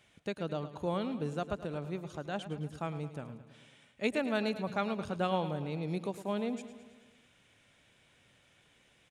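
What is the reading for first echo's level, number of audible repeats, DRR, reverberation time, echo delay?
−13.0 dB, 5, no reverb audible, no reverb audible, 108 ms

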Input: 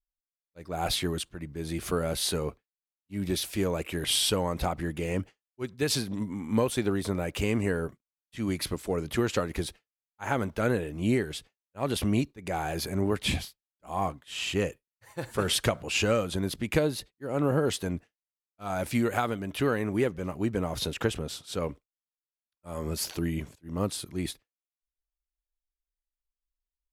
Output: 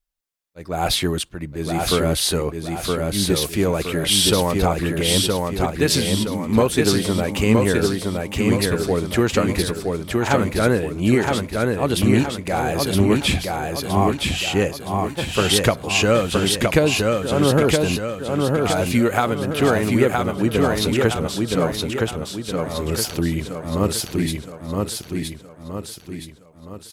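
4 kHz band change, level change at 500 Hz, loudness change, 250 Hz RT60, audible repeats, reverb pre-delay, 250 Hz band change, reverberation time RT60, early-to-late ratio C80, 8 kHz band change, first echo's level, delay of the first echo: +10.5 dB, +10.5 dB, +10.0 dB, no reverb audible, 5, no reverb audible, +10.5 dB, no reverb audible, no reverb audible, +10.5 dB, −3.0 dB, 968 ms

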